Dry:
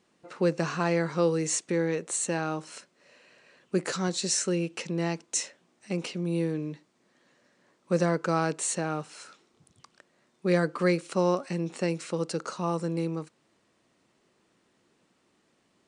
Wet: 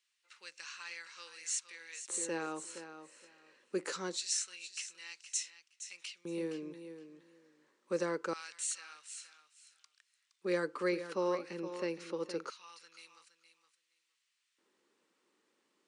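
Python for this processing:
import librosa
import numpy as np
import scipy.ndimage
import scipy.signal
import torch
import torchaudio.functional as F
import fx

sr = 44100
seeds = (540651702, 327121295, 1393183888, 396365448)

y = fx.peak_eq(x, sr, hz=8000.0, db=-14.0, octaves=0.42, at=(10.89, 12.99))
y = fx.echo_feedback(y, sr, ms=467, feedback_pct=16, wet_db=-11.0)
y = fx.filter_lfo_highpass(y, sr, shape='square', hz=0.24, low_hz=370.0, high_hz=2500.0, q=1.0)
y = fx.peak_eq(y, sr, hz=680.0, db=-12.0, octaves=0.28)
y = y * librosa.db_to_amplitude(-7.0)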